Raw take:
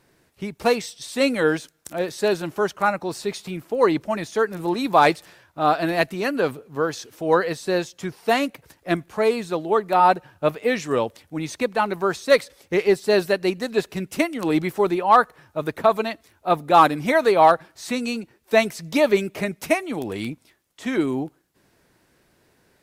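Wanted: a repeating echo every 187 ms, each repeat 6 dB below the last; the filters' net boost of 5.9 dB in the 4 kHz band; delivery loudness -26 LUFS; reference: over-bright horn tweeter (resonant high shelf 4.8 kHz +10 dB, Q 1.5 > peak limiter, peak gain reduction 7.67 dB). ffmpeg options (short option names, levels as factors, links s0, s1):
-af "equalizer=f=4000:t=o:g=6,highshelf=f=4800:t=q:w=1.5:g=10,aecho=1:1:187|374|561|748|935|1122:0.501|0.251|0.125|0.0626|0.0313|0.0157,volume=0.631,alimiter=limit=0.224:level=0:latency=1"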